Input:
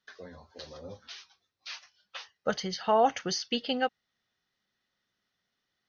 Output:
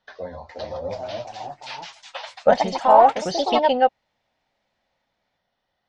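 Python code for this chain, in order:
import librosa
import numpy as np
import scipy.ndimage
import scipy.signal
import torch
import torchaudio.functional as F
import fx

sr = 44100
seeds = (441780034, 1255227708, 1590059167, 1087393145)

p1 = fx.echo_pitch(x, sr, ms=427, semitones=3, count=3, db_per_echo=-3.0)
p2 = 10.0 ** (-23.0 / 20.0) * np.tanh(p1 / 10.0 ** (-23.0 / 20.0))
p3 = p1 + (p2 * 10.0 ** (-7.0 / 20.0))
p4 = scipy.signal.sosfilt(scipy.signal.butter(2, 4300.0, 'lowpass', fs=sr, output='sos'), p3)
p5 = fx.low_shelf(p4, sr, hz=76.0, db=11.0)
p6 = fx.rider(p5, sr, range_db=10, speed_s=0.5)
y = fx.band_shelf(p6, sr, hz=710.0, db=11.0, octaves=1.1)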